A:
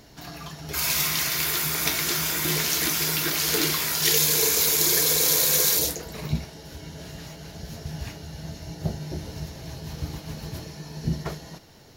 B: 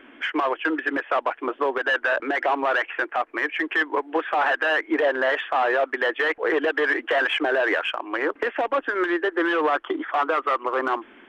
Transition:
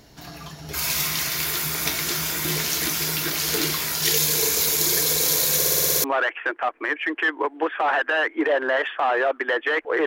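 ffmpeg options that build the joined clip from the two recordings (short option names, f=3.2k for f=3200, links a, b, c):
-filter_complex "[0:a]apad=whole_dur=10.06,atrim=end=10.06,asplit=8[a][b][c][d][e][f][g][h];[a]atrim=end=5.622[i];[b]atrim=start=5.558:end=5.622[j];[c]atrim=start=5.558:end=5.622[k];[d]atrim=start=5.558:end=5.622[l];[e]atrim=start=5.558:end=5.622[m];[f]atrim=start=5.558:end=5.622[n];[g]atrim=start=5.558:end=5.622[o];[h]atrim=start=5.558:end=5.622[p];[1:a]atrim=start=2.568:end=6.59[q];[i][j]acrossfade=d=0.004:c1=hsin:c2=hsin[r];[r][k]acrossfade=d=0.004:c1=hsin:c2=hsin[s];[s][l]acrossfade=d=0.004:c1=hsin:c2=hsin[t];[t][m]acrossfade=d=0.004:c1=hsin:c2=hsin[u];[u][n]acrossfade=d=0.004:c1=hsin:c2=hsin[v];[v][o]acrossfade=d=0.004:c1=hsin:c2=hsin[w];[w][p]acrossfade=d=0.004:c1=hsin:c2=hsin[x];[x][q]acrossfade=d=0.004:c1=hsin:c2=hsin"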